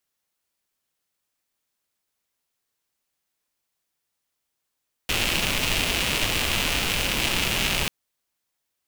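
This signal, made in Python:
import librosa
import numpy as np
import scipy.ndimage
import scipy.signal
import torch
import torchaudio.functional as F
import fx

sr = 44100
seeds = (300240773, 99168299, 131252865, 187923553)

y = fx.rain(sr, seeds[0], length_s=2.79, drops_per_s=240.0, hz=2700.0, bed_db=-0.5)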